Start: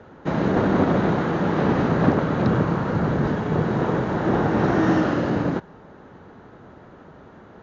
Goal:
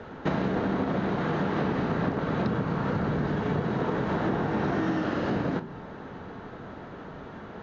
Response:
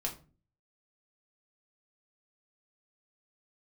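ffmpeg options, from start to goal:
-filter_complex "[0:a]asplit=2[s0][s1];[1:a]atrim=start_sample=2205[s2];[s1][s2]afir=irnorm=-1:irlink=0,volume=0.501[s3];[s0][s3]amix=inputs=2:normalize=0,acompressor=threshold=0.0631:ratio=12,lowpass=4200,highshelf=f=3000:g=9"

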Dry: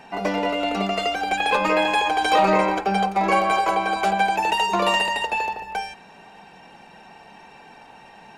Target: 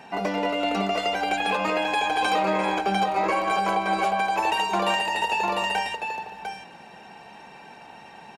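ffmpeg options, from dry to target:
-af "aecho=1:1:700:0.473,alimiter=limit=0.2:level=0:latency=1:release=344,highpass=63"

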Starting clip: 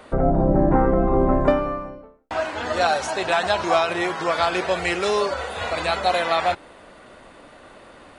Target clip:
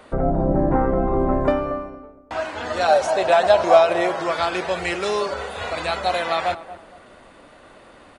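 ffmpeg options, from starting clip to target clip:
-filter_complex "[0:a]asettb=1/sr,asplit=3[s0][s1][s2];[s0]atrim=end=2.884[s3];[s1]atrim=start=2.88:end=4.19,asetpts=PTS-STARTPTS,afade=t=in:d=0.004:c=qsin,afade=t=out:st=1.306:d=0.004:c=qsin,equalizer=f=600:w=2:g=11.5[s4];[s2]atrim=start=4.186[s5];[s3][s4]acrossfade=d=0.004:c1=hsin:c2=qsin[s6];[s6][s5]acrossfade=d=0.004:c1=qsin:c2=hsin,asplit=2[s7][s8];[s8]adelay=232,lowpass=f=940:p=1,volume=0.224,asplit=2[s9][s10];[s10]adelay=232,lowpass=f=940:p=1,volume=0.35,asplit=2[s11][s12];[s12]adelay=232,lowpass=f=940:p=1,volume=0.35[s13];[s9][s11][s13]amix=inputs=3:normalize=0[s14];[s7][s14]amix=inputs=2:normalize=0,volume=0.841"

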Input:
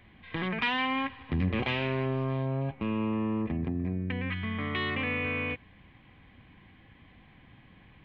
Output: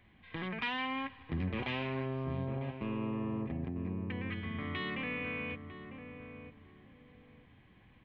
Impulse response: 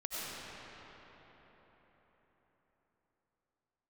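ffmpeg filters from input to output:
-filter_complex "[0:a]asplit=2[s0][s1];[s1]adelay=950,lowpass=f=850:p=1,volume=0.447,asplit=2[s2][s3];[s3]adelay=950,lowpass=f=850:p=1,volume=0.29,asplit=2[s4][s5];[s5]adelay=950,lowpass=f=850:p=1,volume=0.29,asplit=2[s6][s7];[s7]adelay=950,lowpass=f=850:p=1,volume=0.29[s8];[s0][s2][s4][s6][s8]amix=inputs=5:normalize=0,volume=0.447"

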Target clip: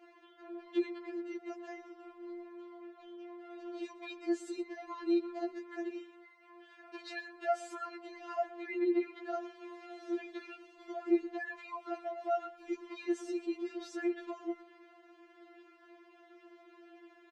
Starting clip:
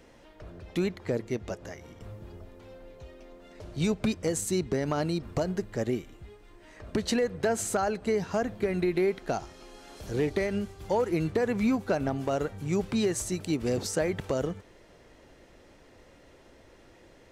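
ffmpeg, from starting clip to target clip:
-filter_complex "[0:a]asettb=1/sr,asplit=3[s0][s1][s2];[s0]atrim=end=5.934[s3];[s1]atrim=start=5.93:end=7.73,asetpts=PTS-STARTPTS,afade=t=in:d=0.004:c=qsin,afade=t=out:st=1.796:d=0.004:c=qsin,lowshelf=f=480:g=-11[s4];[s2]atrim=start=7.726[s5];[s3][s4]acrossfade=d=0.004:c1=hsin:c2=qsin[s6];[s6][s5]acrossfade=d=0.004:c1=qsin:c2=hsin,alimiter=level_in=1.19:limit=0.0631:level=0:latency=1:release=86,volume=0.841,highpass=120,lowpass=3100,aecho=1:1:121:0.126,afftfilt=real='re*4*eq(mod(b,16),0)':imag='im*4*eq(mod(b,16),0)':win_size=2048:overlap=0.75"

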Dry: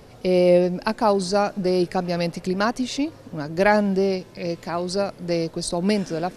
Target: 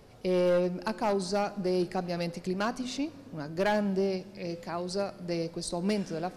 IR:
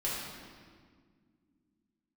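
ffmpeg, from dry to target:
-filter_complex "[0:a]bandreject=f=255.2:t=h:w=4,bandreject=f=510.4:t=h:w=4,bandreject=f=765.6:t=h:w=4,bandreject=f=1020.8:t=h:w=4,bandreject=f=1276:t=h:w=4,bandreject=f=1531.2:t=h:w=4,bandreject=f=1786.4:t=h:w=4,bandreject=f=2041.6:t=h:w=4,bandreject=f=2296.8:t=h:w=4,bandreject=f=2552:t=h:w=4,bandreject=f=2807.2:t=h:w=4,bandreject=f=3062.4:t=h:w=4,bandreject=f=3317.6:t=h:w=4,bandreject=f=3572.8:t=h:w=4,bandreject=f=3828:t=h:w=4,bandreject=f=4083.2:t=h:w=4,bandreject=f=4338.4:t=h:w=4,bandreject=f=4593.6:t=h:w=4,bandreject=f=4848.8:t=h:w=4,bandreject=f=5104:t=h:w=4,bandreject=f=5359.2:t=h:w=4,bandreject=f=5614.4:t=h:w=4,bandreject=f=5869.6:t=h:w=4,bandreject=f=6124.8:t=h:w=4,bandreject=f=6380:t=h:w=4,bandreject=f=6635.2:t=h:w=4,bandreject=f=6890.4:t=h:w=4,bandreject=f=7145.6:t=h:w=4,bandreject=f=7400.8:t=h:w=4,asoftclip=type=hard:threshold=0.211,asplit=2[s0][s1];[1:a]atrim=start_sample=2205[s2];[s1][s2]afir=irnorm=-1:irlink=0,volume=0.0668[s3];[s0][s3]amix=inputs=2:normalize=0,volume=0.376"

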